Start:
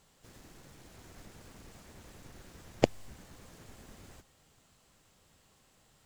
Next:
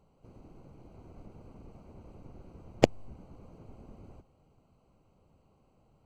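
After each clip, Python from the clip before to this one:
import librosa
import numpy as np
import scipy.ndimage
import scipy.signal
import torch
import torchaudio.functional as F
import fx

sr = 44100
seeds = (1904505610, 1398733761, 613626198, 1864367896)

y = fx.wiener(x, sr, points=25)
y = F.gain(torch.from_numpy(y), 3.5).numpy()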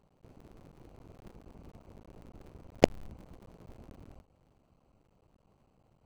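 y = fx.cycle_switch(x, sr, every=3, mode='muted')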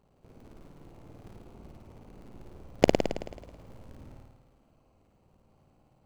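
y = fx.room_flutter(x, sr, wall_m=9.3, rt60_s=1.1)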